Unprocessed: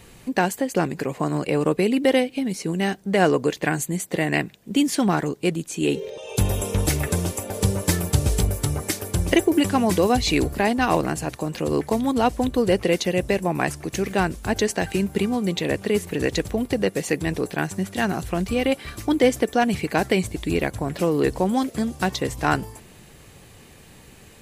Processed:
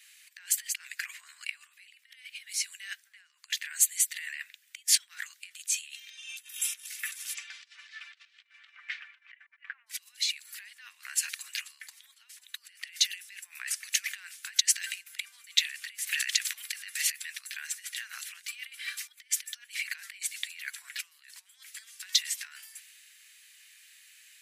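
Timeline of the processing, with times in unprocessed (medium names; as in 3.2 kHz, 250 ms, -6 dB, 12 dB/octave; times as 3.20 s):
7.33–9.86 s: low-pass 5.3 kHz -> 2 kHz 24 dB/octave
16.05–17.10 s: spectral peaks clipped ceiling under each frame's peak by 14 dB
whole clip: compressor with a negative ratio -26 dBFS, ratio -0.5; steep high-pass 1.7 kHz 36 dB/octave; three bands expanded up and down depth 40%; trim -1.5 dB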